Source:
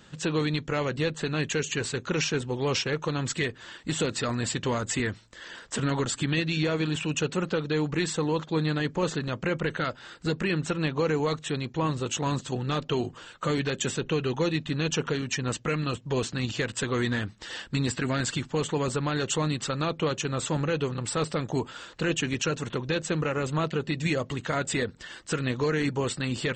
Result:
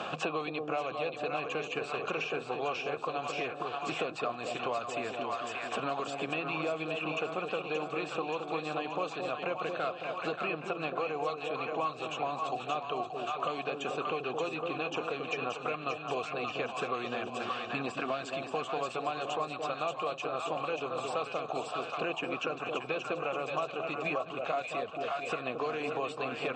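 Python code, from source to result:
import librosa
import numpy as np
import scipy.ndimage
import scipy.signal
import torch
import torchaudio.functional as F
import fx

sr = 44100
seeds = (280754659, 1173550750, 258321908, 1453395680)

y = fx.vowel_filter(x, sr, vowel='a')
y = fx.echo_split(y, sr, split_hz=740.0, low_ms=221, high_ms=578, feedback_pct=52, wet_db=-5.5)
y = fx.band_squash(y, sr, depth_pct=100)
y = F.gain(torch.from_numpy(y), 7.0).numpy()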